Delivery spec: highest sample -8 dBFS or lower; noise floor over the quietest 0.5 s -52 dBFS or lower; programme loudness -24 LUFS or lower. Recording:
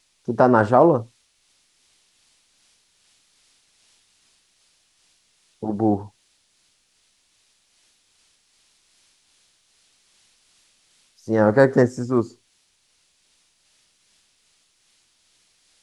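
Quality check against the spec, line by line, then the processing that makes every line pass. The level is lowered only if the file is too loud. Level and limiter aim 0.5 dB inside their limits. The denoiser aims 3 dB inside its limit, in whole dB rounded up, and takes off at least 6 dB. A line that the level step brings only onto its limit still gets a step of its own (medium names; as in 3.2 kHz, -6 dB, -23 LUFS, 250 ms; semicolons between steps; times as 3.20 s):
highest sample -2.5 dBFS: fail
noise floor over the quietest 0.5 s -65 dBFS: pass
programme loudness -19.5 LUFS: fail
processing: trim -5 dB; peak limiter -8.5 dBFS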